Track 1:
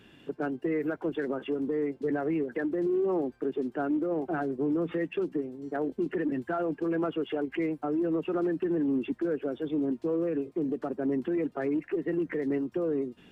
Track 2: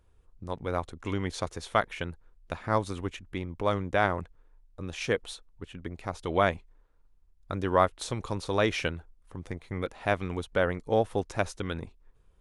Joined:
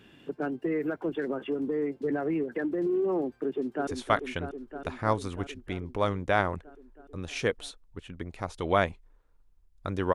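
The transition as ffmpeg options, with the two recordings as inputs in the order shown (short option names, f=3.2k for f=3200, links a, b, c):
-filter_complex "[0:a]apad=whole_dur=10.14,atrim=end=10.14,atrim=end=3.872[a];[1:a]atrim=start=1.518:end=7.79[b];[a][b]acrossfade=d=0.004:c1=hsin:c2=hsin,asplit=2[c][d];[d]afade=t=in:st=3.47:d=0.01,afade=t=out:st=3.87:d=0.01,aecho=0:1:320|640|960|1280|1600|1920|2240|2560|2880|3200|3520|3840:0.501187|0.40095|0.32076|0.256608|0.205286|0.164229|0.131383|0.105107|0.0840853|0.0672682|0.0538146|0.0430517[e];[c][e]amix=inputs=2:normalize=0"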